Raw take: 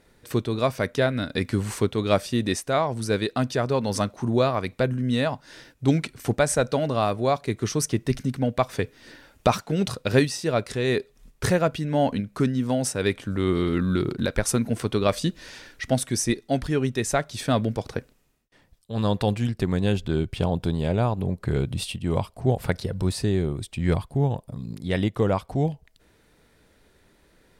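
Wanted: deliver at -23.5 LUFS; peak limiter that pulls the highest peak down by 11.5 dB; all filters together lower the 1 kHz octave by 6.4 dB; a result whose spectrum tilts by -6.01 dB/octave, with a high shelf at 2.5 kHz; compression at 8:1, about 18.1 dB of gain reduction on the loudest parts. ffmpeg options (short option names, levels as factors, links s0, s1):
-af "equalizer=f=1000:t=o:g=-8.5,highshelf=f=2500:g=-7,acompressor=threshold=0.0158:ratio=8,volume=9.44,alimiter=limit=0.251:level=0:latency=1"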